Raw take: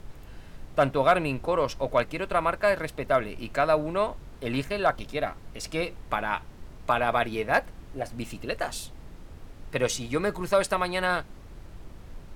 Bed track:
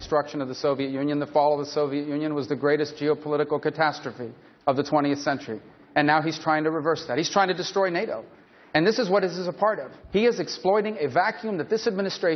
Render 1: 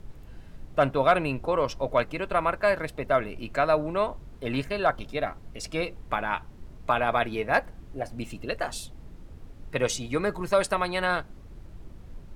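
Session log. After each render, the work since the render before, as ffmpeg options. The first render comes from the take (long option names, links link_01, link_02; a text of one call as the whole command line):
ffmpeg -i in.wav -af "afftdn=noise_reduction=6:noise_floor=-47" out.wav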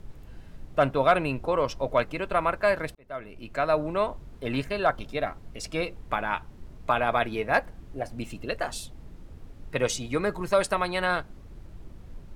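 ffmpeg -i in.wav -filter_complex "[0:a]asplit=2[link_01][link_02];[link_01]atrim=end=2.95,asetpts=PTS-STARTPTS,afade=type=out:start_time=2.946:duration=0.004:curve=hsin[link_03];[link_02]atrim=start=2.95,asetpts=PTS-STARTPTS,afade=type=in:duration=0.88[link_04];[link_03][link_04]concat=n=2:v=0:a=1" out.wav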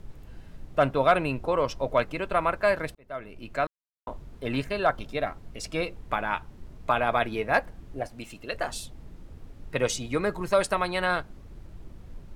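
ffmpeg -i in.wav -filter_complex "[0:a]asettb=1/sr,asplit=3[link_01][link_02][link_03];[link_01]atrim=end=8.074[link_04];[link_02]atrim=start=8.07:end=8.54,asetpts=PTS-STARTPTS,afade=type=in:duration=0.004:curve=qsin,afade=type=out:start_time=0.466:duration=0.004:curve=qsin,lowshelf=frequency=400:gain=-9[link_05];[link_03]atrim=start=8.536[link_06];[link_04][link_05]acrossfade=duration=0.004:curve1=hsin:curve2=qsin[link_07];[link_07][link_06]acrossfade=duration=0.004:curve1=qsin:curve2=hsin,asplit=3[link_08][link_09][link_10];[link_08]atrim=end=3.67,asetpts=PTS-STARTPTS,afade=type=out:start_time=3.666:duration=0.004:curve=hsin[link_11];[link_09]atrim=start=3.67:end=4.07,asetpts=PTS-STARTPTS,volume=0[link_12];[link_10]atrim=start=4.07,asetpts=PTS-STARTPTS,afade=type=in:duration=0.004:curve=hsin[link_13];[link_11][link_12][link_13]concat=n=3:v=0:a=1" out.wav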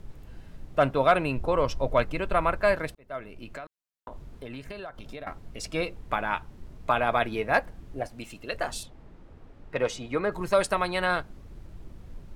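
ffmpeg -i in.wav -filter_complex "[0:a]asettb=1/sr,asplit=3[link_01][link_02][link_03];[link_01]atrim=end=1.364[link_04];[link_02]atrim=start=1.36:end=2.77,asetpts=PTS-STARTPTS,afade=type=in:duration=0.004:curve=qsin,afade=type=out:start_time=1.406:duration=0.004:curve=qsin,lowshelf=frequency=100:gain=9.5[link_05];[link_03]atrim=start=2.766[link_06];[link_04][link_05]acrossfade=duration=0.004:curve1=hsin:curve2=qsin[link_07];[link_07][link_06]acrossfade=duration=0.004:curve1=qsin:curve2=hsin,asettb=1/sr,asplit=3[link_08][link_09][link_10];[link_08]atrim=end=3.294[link_11];[link_09]atrim=start=3.29:end=5.27,asetpts=PTS-STARTPTS,afade=type=in:duration=0.004:curve=qsin,afade=type=out:start_time=1.976:duration=0.004:curve=qsin,acompressor=threshold=-35dB:ratio=12:attack=3.2:release=140:knee=1:detection=peak[link_12];[link_10]atrim=start=5.266[link_13];[link_11][link_12]acrossfade=duration=0.004:curve1=hsin:curve2=qsin[link_14];[link_14][link_13]acrossfade=duration=0.004:curve1=qsin:curve2=hsin,asettb=1/sr,asplit=3[link_15][link_16][link_17];[link_15]atrim=end=8.834[link_18];[link_16]atrim=start=8.83:end=10.32,asetpts=PTS-STARTPTS,afade=type=in:duration=0.004:curve=qsin,afade=type=out:start_time=1.486:duration=0.004:curve=qsin,asplit=2[link_19][link_20];[link_20]highpass=frequency=720:poles=1,volume=9dB,asoftclip=type=tanh:threshold=-11.5dB[link_21];[link_19][link_21]amix=inputs=2:normalize=0,lowpass=frequency=1200:poles=1,volume=-6dB[link_22];[link_17]atrim=start=10.316[link_23];[link_18][link_22]acrossfade=duration=0.004:curve1=hsin:curve2=qsin[link_24];[link_24][link_23]acrossfade=duration=0.004:curve1=qsin:curve2=hsin" out.wav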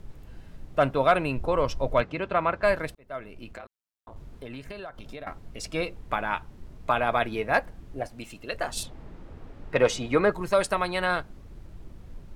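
ffmpeg -i in.wav -filter_complex "[0:a]asettb=1/sr,asplit=3[link_01][link_02][link_03];[link_01]atrim=end=2.014[link_04];[link_02]atrim=start=2.01:end=2.63,asetpts=PTS-STARTPTS,afade=type=in:duration=0.004:curve=qsin,afade=type=out:start_time=0.616:duration=0.004:curve=qsin,highpass=100,lowpass=4600[link_05];[link_03]atrim=start=2.626[link_06];[link_04][link_05]acrossfade=duration=0.004:curve1=hsin:curve2=qsin[link_07];[link_07][link_06]acrossfade=duration=0.004:curve1=qsin:curve2=hsin,asettb=1/sr,asplit=3[link_08][link_09][link_10];[link_08]atrim=end=3.514[link_11];[link_09]atrim=start=3.51:end=4.16,asetpts=PTS-STARTPTS,afade=type=in:duration=0.004:curve=qsin,afade=type=out:start_time=0.646:duration=0.004:curve=qsin,aeval=exprs='val(0)*sin(2*PI*55*n/s)':channel_layout=same[link_12];[link_10]atrim=start=4.156[link_13];[link_11][link_12]acrossfade=duration=0.004:curve1=hsin:curve2=qsin[link_14];[link_14][link_13]acrossfade=duration=0.004:curve1=qsin:curve2=hsin,asettb=1/sr,asplit=3[link_15][link_16][link_17];[link_15]atrim=end=8.774[link_18];[link_16]atrim=start=8.77:end=10.32,asetpts=PTS-STARTPTS,afade=type=in:duration=0.004:curve=qsin,afade=type=out:start_time=1.546:duration=0.004:curve=qsin,acontrast=48[link_19];[link_17]atrim=start=10.316[link_20];[link_18][link_19]acrossfade=duration=0.004:curve1=hsin:curve2=qsin[link_21];[link_21][link_20]acrossfade=duration=0.004:curve1=qsin:curve2=hsin" out.wav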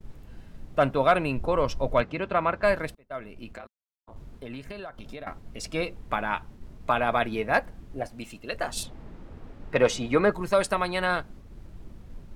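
ffmpeg -i in.wav -af "equalizer=frequency=220:width=3.6:gain=3.5,agate=range=-33dB:threshold=-42dB:ratio=3:detection=peak" out.wav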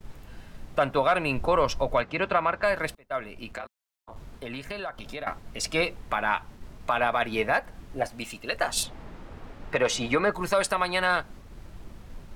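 ffmpeg -i in.wav -filter_complex "[0:a]acrossover=split=600[link_01][link_02];[link_02]acontrast=85[link_03];[link_01][link_03]amix=inputs=2:normalize=0,alimiter=limit=-13dB:level=0:latency=1:release=207" out.wav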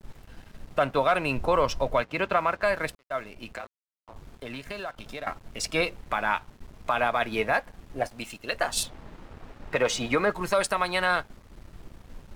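ffmpeg -i in.wav -af "aeval=exprs='sgn(val(0))*max(abs(val(0))-0.00282,0)':channel_layout=same" out.wav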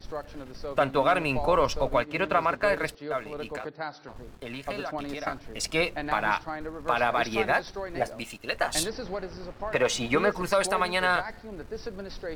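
ffmpeg -i in.wav -i bed.wav -filter_complex "[1:a]volume=-13dB[link_01];[0:a][link_01]amix=inputs=2:normalize=0" out.wav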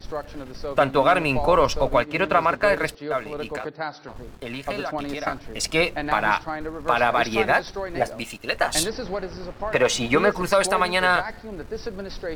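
ffmpeg -i in.wav -af "volume=5dB" out.wav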